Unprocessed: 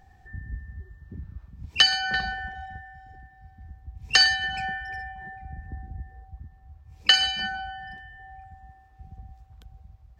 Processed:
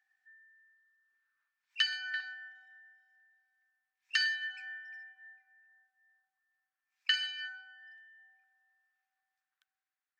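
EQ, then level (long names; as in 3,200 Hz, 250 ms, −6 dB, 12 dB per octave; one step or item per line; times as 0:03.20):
dynamic equaliser 2,800 Hz, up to +5 dB, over −34 dBFS, Q 1.2
four-pole ladder high-pass 1,400 Hz, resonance 55%
−9.0 dB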